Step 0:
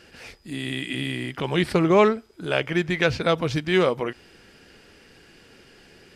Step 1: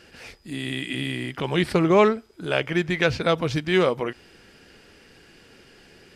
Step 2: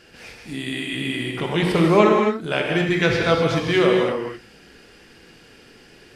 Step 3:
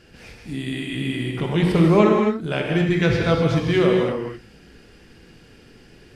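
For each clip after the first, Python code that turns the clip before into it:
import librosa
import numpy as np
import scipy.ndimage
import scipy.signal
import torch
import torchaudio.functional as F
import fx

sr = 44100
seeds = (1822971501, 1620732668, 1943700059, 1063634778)

y1 = x
y2 = fx.rev_gated(y1, sr, seeds[0], gate_ms=290, shape='flat', drr_db=-0.5)
y3 = fx.low_shelf(y2, sr, hz=250.0, db=11.5)
y3 = y3 * 10.0 ** (-4.0 / 20.0)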